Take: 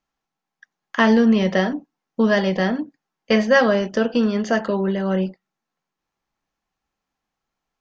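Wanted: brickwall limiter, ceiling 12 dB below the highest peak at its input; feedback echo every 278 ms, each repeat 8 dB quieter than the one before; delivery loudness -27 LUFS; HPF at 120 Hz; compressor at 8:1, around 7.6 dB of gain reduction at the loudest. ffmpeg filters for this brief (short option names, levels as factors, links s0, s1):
-af "highpass=120,acompressor=threshold=0.112:ratio=8,alimiter=limit=0.133:level=0:latency=1,aecho=1:1:278|556|834|1112|1390:0.398|0.159|0.0637|0.0255|0.0102,volume=0.944"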